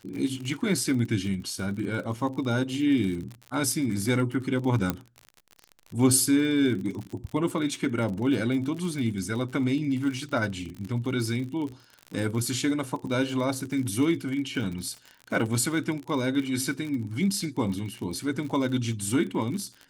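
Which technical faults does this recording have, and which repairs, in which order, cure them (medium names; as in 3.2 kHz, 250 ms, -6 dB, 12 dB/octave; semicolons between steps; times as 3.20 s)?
crackle 50 per s -33 dBFS
4.90 s: pop -11 dBFS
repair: de-click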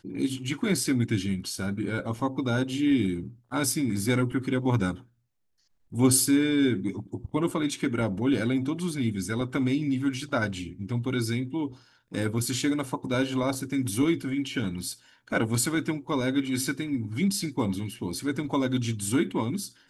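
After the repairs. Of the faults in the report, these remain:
nothing left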